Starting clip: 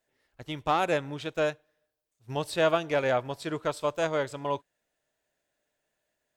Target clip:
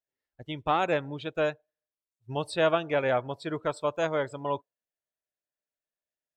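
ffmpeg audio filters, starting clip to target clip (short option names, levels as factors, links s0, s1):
-af "afftdn=nr=19:nf=-43"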